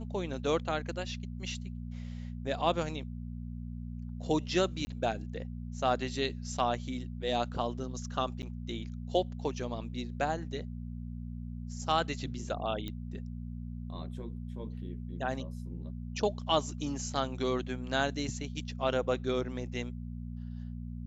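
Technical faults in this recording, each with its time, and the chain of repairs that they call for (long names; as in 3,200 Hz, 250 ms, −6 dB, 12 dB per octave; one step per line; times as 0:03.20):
mains hum 60 Hz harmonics 4 −40 dBFS
0:04.85–0:04.87: drop-out 20 ms
0:08.42–0:08.43: drop-out 9.4 ms
0:12.88: click −25 dBFS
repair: click removal
hum removal 60 Hz, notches 4
repair the gap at 0:04.85, 20 ms
repair the gap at 0:08.42, 9.4 ms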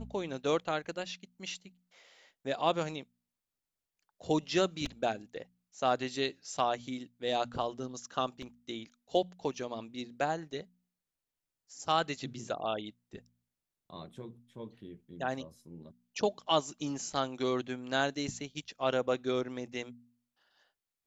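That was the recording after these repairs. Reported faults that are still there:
none of them is left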